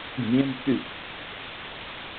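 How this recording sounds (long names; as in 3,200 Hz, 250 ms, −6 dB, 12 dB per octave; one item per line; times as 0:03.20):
a buzz of ramps at a fixed pitch in blocks of 8 samples
chopped level 1.7 Hz, depth 60%, duty 70%
a quantiser's noise floor 6 bits, dither triangular
G.726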